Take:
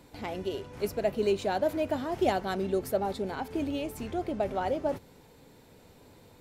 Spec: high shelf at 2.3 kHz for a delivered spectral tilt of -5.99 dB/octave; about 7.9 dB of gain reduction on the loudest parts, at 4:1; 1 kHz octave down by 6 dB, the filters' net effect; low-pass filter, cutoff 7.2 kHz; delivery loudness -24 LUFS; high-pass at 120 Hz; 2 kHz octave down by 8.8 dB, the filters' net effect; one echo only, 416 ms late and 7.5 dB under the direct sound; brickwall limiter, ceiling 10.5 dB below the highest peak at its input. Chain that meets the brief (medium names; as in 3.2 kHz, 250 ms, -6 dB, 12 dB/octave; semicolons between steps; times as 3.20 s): high-pass 120 Hz; low-pass 7.2 kHz; peaking EQ 1 kHz -7.5 dB; peaking EQ 2 kHz -6.5 dB; treble shelf 2.3 kHz -5 dB; compression 4:1, threshold -33 dBFS; peak limiter -34.5 dBFS; delay 416 ms -7.5 dB; trim +18.5 dB